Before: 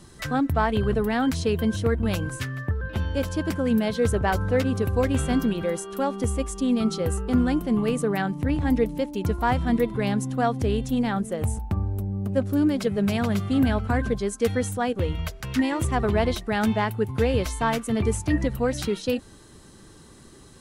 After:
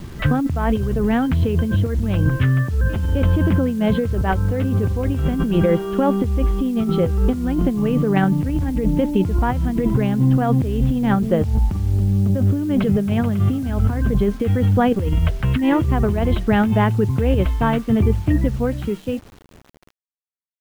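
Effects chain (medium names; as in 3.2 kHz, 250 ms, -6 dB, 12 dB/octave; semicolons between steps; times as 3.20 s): fade out at the end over 5.75 s; Chebyshev low-pass 3.2 kHz, order 4; bass shelf 370 Hz +11.5 dB; compressor with a negative ratio -21 dBFS, ratio -1; bit crusher 8-bit; trim +3.5 dB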